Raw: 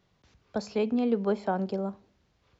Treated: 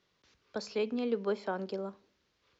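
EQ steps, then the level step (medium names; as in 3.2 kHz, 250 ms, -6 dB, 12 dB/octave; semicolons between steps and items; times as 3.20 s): distance through air 140 m; tone controls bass -14 dB, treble +10 dB; peaking EQ 740 Hz -8.5 dB 0.69 oct; 0.0 dB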